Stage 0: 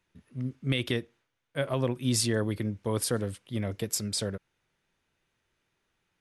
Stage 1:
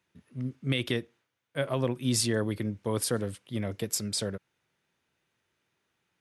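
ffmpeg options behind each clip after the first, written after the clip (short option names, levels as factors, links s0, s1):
-af "highpass=90"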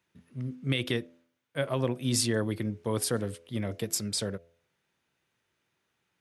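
-af "bandreject=f=84.28:t=h:w=4,bandreject=f=168.56:t=h:w=4,bandreject=f=252.84:t=h:w=4,bandreject=f=337.12:t=h:w=4,bandreject=f=421.4:t=h:w=4,bandreject=f=505.68:t=h:w=4,bandreject=f=589.96:t=h:w=4,bandreject=f=674.24:t=h:w=4,bandreject=f=758.52:t=h:w=4"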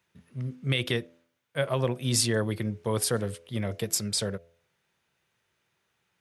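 -af "equalizer=f=280:w=3:g=-7.5,volume=1.41"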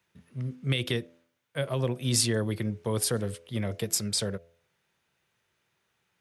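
-filter_complex "[0:a]acrossover=split=470|3000[s0][s1][s2];[s1]acompressor=threshold=0.0158:ratio=2.5[s3];[s0][s3][s2]amix=inputs=3:normalize=0"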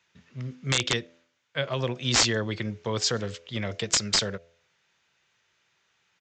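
-af "tiltshelf=f=860:g=-5,aresample=16000,aeval=exprs='(mod(6.31*val(0)+1,2)-1)/6.31':c=same,aresample=44100,volume=1.41"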